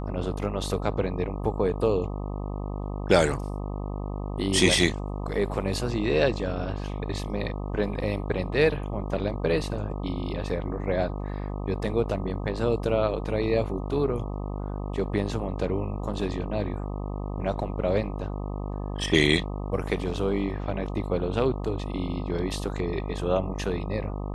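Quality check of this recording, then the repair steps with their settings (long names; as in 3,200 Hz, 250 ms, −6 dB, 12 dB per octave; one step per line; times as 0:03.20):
mains buzz 50 Hz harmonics 25 −32 dBFS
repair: hum removal 50 Hz, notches 25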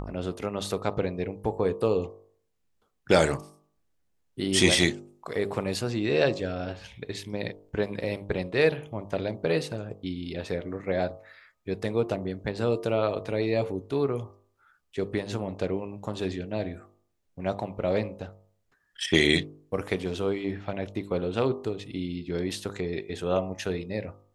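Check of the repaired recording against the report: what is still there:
none of them is left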